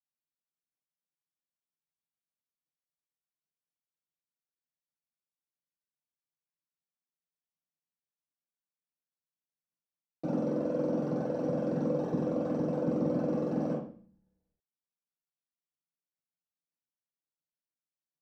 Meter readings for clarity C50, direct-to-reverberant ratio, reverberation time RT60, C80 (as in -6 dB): 5.0 dB, -11.5 dB, 0.45 s, 9.5 dB